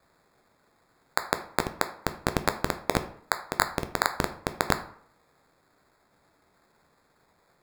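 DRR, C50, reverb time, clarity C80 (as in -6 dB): 8.0 dB, 13.0 dB, 0.60 s, 16.5 dB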